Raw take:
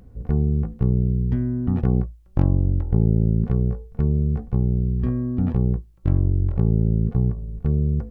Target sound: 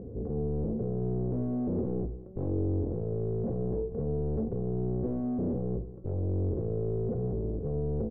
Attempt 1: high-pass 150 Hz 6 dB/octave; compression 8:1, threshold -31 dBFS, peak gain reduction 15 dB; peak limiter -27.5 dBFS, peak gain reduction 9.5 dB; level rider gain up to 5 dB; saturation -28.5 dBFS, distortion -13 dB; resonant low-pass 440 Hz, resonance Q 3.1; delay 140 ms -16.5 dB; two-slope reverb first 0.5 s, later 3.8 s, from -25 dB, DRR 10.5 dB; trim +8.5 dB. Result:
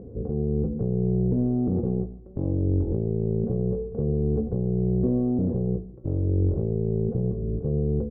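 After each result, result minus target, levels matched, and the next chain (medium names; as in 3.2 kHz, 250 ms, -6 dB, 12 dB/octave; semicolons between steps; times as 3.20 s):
compression: peak gain reduction +15 dB; echo 63 ms early; saturation: distortion -8 dB
high-pass 150 Hz 6 dB/octave; peak limiter -27.5 dBFS, peak gain reduction 19 dB; level rider gain up to 5 dB; saturation -28.5 dBFS, distortion -13 dB; resonant low-pass 440 Hz, resonance Q 3.1; delay 140 ms -16.5 dB; two-slope reverb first 0.5 s, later 3.8 s, from -25 dB, DRR 10.5 dB; trim +8.5 dB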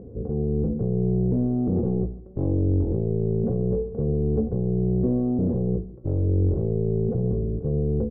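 echo 63 ms early; saturation: distortion -8 dB
high-pass 150 Hz 6 dB/octave; peak limiter -27.5 dBFS, peak gain reduction 19 dB; level rider gain up to 5 dB; saturation -28.5 dBFS, distortion -13 dB; resonant low-pass 440 Hz, resonance Q 3.1; delay 203 ms -16.5 dB; two-slope reverb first 0.5 s, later 3.8 s, from -25 dB, DRR 10.5 dB; trim +8.5 dB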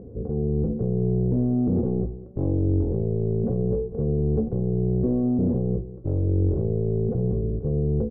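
saturation: distortion -8 dB
high-pass 150 Hz 6 dB/octave; peak limiter -27.5 dBFS, peak gain reduction 19 dB; level rider gain up to 5 dB; saturation -40 dBFS, distortion -5 dB; resonant low-pass 440 Hz, resonance Q 3.1; delay 203 ms -16.5 dB; two-slope reverb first 0.5 s, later 3.8 s, from -25 dB, DRR 10.5 dB; trim +8.5 dB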